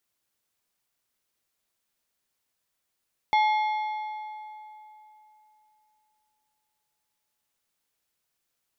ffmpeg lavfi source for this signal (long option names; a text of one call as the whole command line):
ffmpeg -f lavfi -i "aevalsrc='0.126*pow(10,-3*t/3.21)*sin(2*PI*856*t)+0.0501*pow(10,-3*t/2.439)*sin(2*PI*2140*t)+0.02*pow(10,-3*t/2.118)*sin(2*PI*3424*t)+0.00794*pow(10,-3*t/1.981)*sin(2*PI*4280*t)+0.00316*pow(10,-3*t/1.831)*sin(2*PI*5564*t)':duration=5.04:sample_rate=44100" out.wav